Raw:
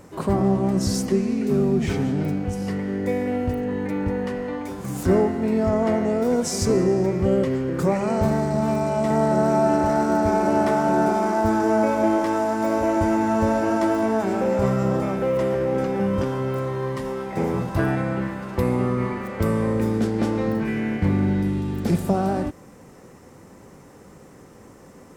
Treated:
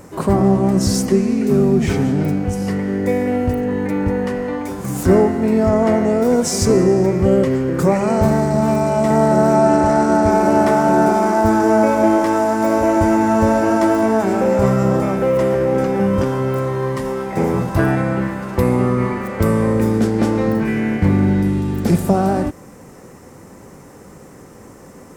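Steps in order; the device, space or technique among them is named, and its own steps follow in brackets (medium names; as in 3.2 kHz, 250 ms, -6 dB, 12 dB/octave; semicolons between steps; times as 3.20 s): 9.55–10.30 s: low-pass 11 kHz 24 dB/octave; exciter from parts (in parallel at -7.5 dB: high-pass 3.1 kHz 12 dB/octave + saturation -35 dBFS, distortion -8 dB + high-pass 2.9 kHz 12 dB/octave); on the sum: trim +6 dB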